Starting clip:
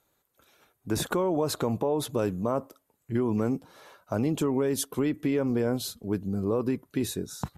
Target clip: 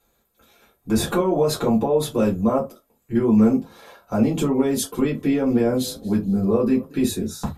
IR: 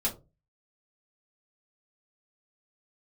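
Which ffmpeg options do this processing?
-filter_complex "[0:a]asettb=1/sr,asplit=3[a][b][c];[a]atrim=end=4.914[d];[b]atrim=start=4.91:end=7.26,asetpts=PTS-STARTPTS,afade=t=in:d=0.004:c=qsin,afade=t=out:st=2.346:d=0.004:c=qsin,asplit=3[e][f][g];[f]adelay=229,afreqshift=31,volume=-22.5dB[h];[g]adelay=458,afreqshift=62,volume=-31.6dB[i];[e][h][i]amix=inputs=3:normalize=0,atrim=end_sample=103635[j];[c]atrim=start=7.256[k];[d][j]acrossfade=d=0.004:c1=hsin:c2=qsin[l];[l][k]acrossfade=d=0.004:c1=qsin:c2=hsin[m];[1:a]atrim=start_sample=2205,atrim=end_sample=3969[n];[m][n]afir=irnorm=-1:irlink=0"

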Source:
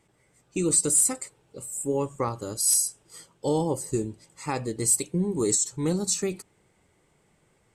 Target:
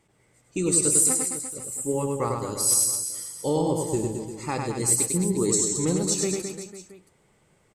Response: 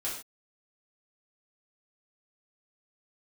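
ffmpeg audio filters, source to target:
-af "aecho=1:1:100|215|347.2|499.3|674.2:0.631|0.398|0.251|0.158|0.1"

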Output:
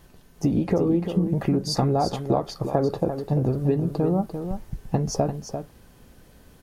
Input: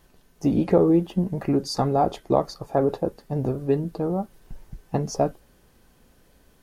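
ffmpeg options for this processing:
-af "equalizer=f=110:t=o:w=1.9:g=5,acompressor=threshold=-23dB:ratio=6,aecho=1:1:345:0.376,volume=4dB"

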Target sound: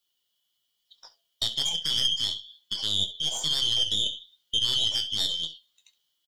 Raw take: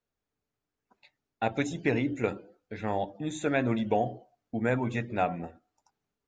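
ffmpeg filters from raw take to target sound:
-filter_complex "[0:a]afftfilt=real='real(if(lt(b,272),68*(eq(floor(b/68),0)*2+eq(floor(b/68),1)*3+eq(floor(b/68),2)*0+eq(floor(b/68),3)*1)+mod(b,68),b),0)':imag='imag(if(lt(b,272),68*(eq(floor(b/68),0)*2+eq(floor(b/68),1)*3+eq(floor(b/68),2)*0+eq(floor(b/68),3)*1)+mod(b,68),b),0)':win_size=2048:overlap=0.75,asplit=2[a][b];[b]acompressor=threshold=-40dB:ratio=8,volume=-3dB[c];[a][c]amix=inputs=2:normalize=0,alimiter=limit=-21.5dB:level=0:latency=1:release=42,adynamicequalizer=threshold=0.00316:dfrequency=1700:dqfactor=1.8:tfrequency=1700:tqfactor=1.8:attack=5:release=100:ratio=0.375:range=2.5:mode=cutabove:tftype=bell,bandreject=f=84.75:t=h:w=4,bandreject=f=169.5:t=h:w=4,bandreject=f=254.25:t=h:w=4,bandreject=f=339:t=h:w=4,bandreject=f=423.75:t=h:w=4,bandreject=f=508.5:t=h:w=4,bandreject=f=593.25:t=h:w=4,bandreject=f=678:t=h:w=4,crystalizer=i=1.5:c=0,aeval=exprs='0.133*(cos(1*acos(clip(val(0)/0.133,-1,1)))-cos(1*PI/2))+0.0266*(cos(2*acos(clip(val(0)/0.133,-1,1)))-cos(2*PI/2))+0.0133*(cos(3*acos(clip(val(0)/0.133,-1,1)))-cos(3*PI/2))':c=same,asplit=2[d][e];[e]aecho=0:1:19|68:0.266|0.141[f];[d][f]amix=inputs=2:normalize=0,flanger=delay=5.5:depth=5.9:regen=52:speed=1.1:shape=sinusoidal,volume=8dB"

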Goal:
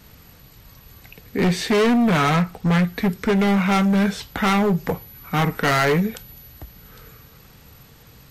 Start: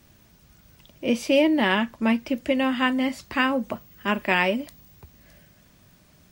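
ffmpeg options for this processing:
-af "volume=23.5dB,asoftclip=hard,volume=-23.5dB,asetrate=33516,aresample=44100,volume=8.5dB"

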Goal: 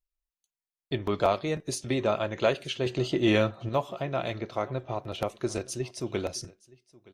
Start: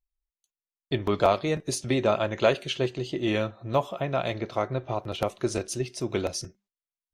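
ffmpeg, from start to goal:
-filter_complex "[0:a]asettb=1/sr,asplit=3[a][b][c];[a]atrim=end=2.864[d];[b]atrim=start=2.86:end=3.69,asetpts=PTS-STARTPTS,afade=t=in:d=0.004:c=qsin,afade=t=out:st=0.826:d=0.004:c=qsin,acontrast=69[e];[c]atrim=start=3.686[f];[d][e]acrossfade=d=0.004:c1=hsin:c2=qsin[g];[g][f]acrossfade=d=0.004:c1=qsin:c2=hsin,aecho=1:1:920:0.0668,volume=-3dB"

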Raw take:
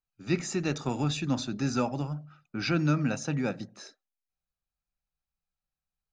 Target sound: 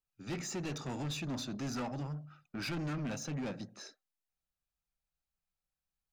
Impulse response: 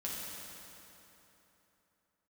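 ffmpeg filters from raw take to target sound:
-af "asoftclip=type=tanh:threshold=-31dB,aeval=exprs='0.0282*(cos(1*acos(clip(val(0)/0.0282,-1,1)))-cos(1*PI/2))+0.000631*(cos(5*acos(clip(val(0)/0.0282,-1,1)))-cos(5*PI/2))':c=same,volume=-3dB"

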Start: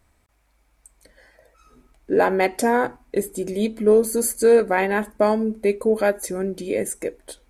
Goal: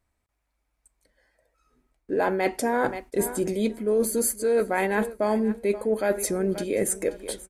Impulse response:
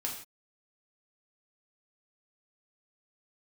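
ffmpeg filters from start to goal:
-af "aecho=1:1:530|1060:0.1|0.024,agate=range=-18dB:threshold=-45dB:ratio=16:detection=peak,areverse,acompressor=threshold=-26dB:ratio=5,areverse,volume=4.5dB"

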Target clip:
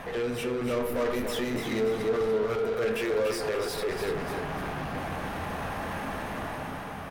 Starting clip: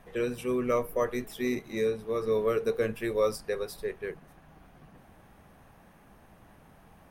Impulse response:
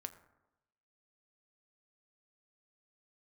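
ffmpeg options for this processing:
-filter_complex "[0:a]lowshelf=f=210:g=9,asettb=1/sr,asplit=3[a][b][c];[a]atrim=end=2.694[d];[b]atrim=start=2.69:end=3.89,asetpts=PTS-STARTPTS,afade=t=in:d=0.004:c=qsin,afade=t=out:st=1.196:d=0.004:c=qsin,acrossover=split=270|3000[e][f][g];[e]acompressor=threshold=-43dB:ratio=6[h];[h][f][g]amix=inputs=3:normalize=0[i];[c]atrim=start=3.886[j];[d][i]acrossfade=d=0.004:c1=hsin:c2=qsin[k];[k][j]acrossfade=d=0.004:c1=qsin:c2=hsin,alimiter=level_in=2dB:limit=-24dB:level=0:latency=1:release=326,volume=-2dB,dynaudnorm=f=110:g=13:m=8dB,asoftclip=type=tanh:threshold=-30dB,asplit=2[l][m];[m]highpass=f=720:p=1,volume=23dB,asoftclip=type=tanh:threshold=-30dB[n];[l][n]amix=inputs=2:normalize=0,lowpass=f=3.6k:p=1,volume=-6dB,aecho=1:1:291|582|873|1164:0.473|0.18|0.0683|0.026[o];[1:a]atrim=start_sample=2205[p];[o][p]afir=irnorm=-1:irlink=0,volume=8dB"

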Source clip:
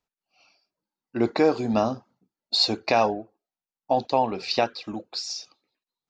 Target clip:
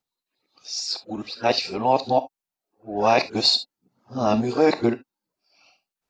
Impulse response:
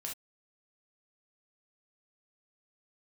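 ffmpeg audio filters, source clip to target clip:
-filter_complex "[0:a]areverse,asplit=2[a][b];[b]highshelf=f=4.7k:g=8.5[c];[1:a]atrim=start_sample=2205[d];[c][d]afir=irnorm=-1:irlink=0,volume=-6.5dB[e];[a][e]amix=inputs=2:normalize=0"

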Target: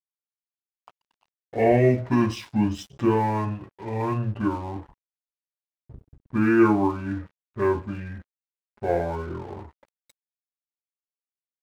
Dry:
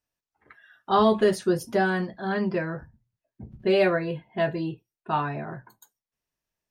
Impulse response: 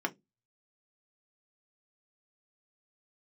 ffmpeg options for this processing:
-filter_complex "[0:a]asetrate=25442,aresample=44100,asplit=2[a][b];[1:a]atrim=start_sample=2205[c];[b][c]afir=irnorm=-1:irlink=0,volume=-13dB[d];[a][d]amix=inputs=2:normalize=0,aeval=exprs='sgn(val(0))*max(abs(val(0))-0.00562,0)':c=same"

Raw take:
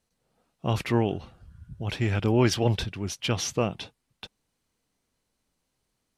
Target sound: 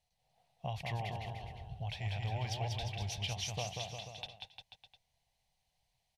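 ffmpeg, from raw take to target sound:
-filter_complex "[0:a]firequalizer=gain_entry='entry(130,0);entry(280,-24);entry(730,7);entry(1300,-17);entry(1900,-1);entry(3400,2);entry(7900,-6);entry(12000,-4)':delay=0.05:min_phase=1,acompressor=threshold=-34dB:ratio=6,asplit=2[a][b];[b]aecho=0:1:190|351.5|488.8|605.5|704.6:0.631|0.398|0.251|0.158|0.1[c];[a][c]amix=inputs=2:normalize=0,volume=-3dB"

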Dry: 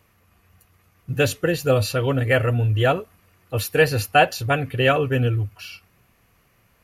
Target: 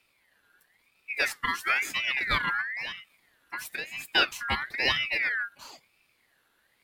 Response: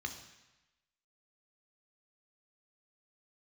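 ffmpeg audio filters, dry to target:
-filter_complex "[0:a]asettb=1/sr,asplit=3[a][b][c];[a]atrim=end=2.614[d];[b]atrim=start=2.61:end=4.08,asetpts=PTS-STARTPTS,afade=t=in:d=0.004:c=qsin,afade=t=out:st=1.466:d=0.004:c=qsin,acompressor=threshold=-24dB:ratio=16[e];[c]atrim=start=4.076[f];[d][e]acrossfade=d=0.004:c1=hsin:c2=qsin[g];[g][f]acrossfade=d=0.004:c1=qsin:c2=hsin,aeval=exprs='val(0)*sin(2*PI*2000*n/s+2000*0.25/1*sin(2*PI*1*n/s))':c=same,volume=-5.5dB"

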